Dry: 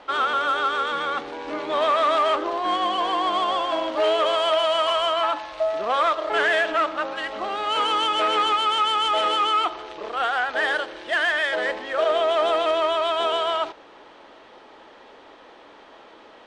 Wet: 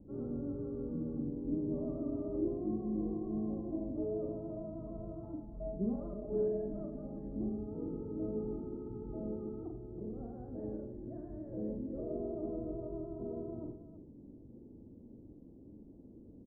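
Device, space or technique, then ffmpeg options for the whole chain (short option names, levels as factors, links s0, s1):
the neighbour's flat through the wall: -filter_complex "[0:a]asettb=1/sr,asplit=3[s0][s1][s2];[s0]atrim=end=5.404[s3];[s1]atrim=start=5.4:end=7.29,asetpts=PTS-STARTPTS,afade=t=in:d=0.004:c=qsin,afade=t=out:st=1.886:d=0.004:c=qsin,aecho=1:1:4.9:0.79,atrim=end_sample=83349[s4];[s2]atrim=start=7.286[s5];[s3][s4]acrossfade=d=0.004:c1=hsin:c2=qsin[s6];[s6][s5]acrossfade=d=0.004:c1=qsin:c2=hsin,lowpass=f=240:w=0.5412,lowpass=f=240:w=1.3066,equalizer=f=100:t=o:w=0.87:g=7,aecho=1:1:42|89|326:0.596|0.299|0.266,volume=2.37"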